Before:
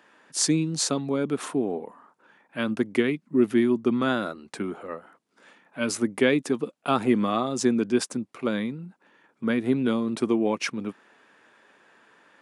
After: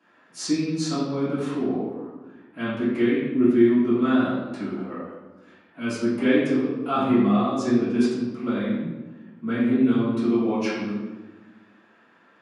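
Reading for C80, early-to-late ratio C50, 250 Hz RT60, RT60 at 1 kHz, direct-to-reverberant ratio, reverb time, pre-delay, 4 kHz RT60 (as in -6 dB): 2.5 dB, -0.5 dB, 1.8 s, 1.1 s, -14.5 dB, 1.2 s, 3 ms, 0.80 s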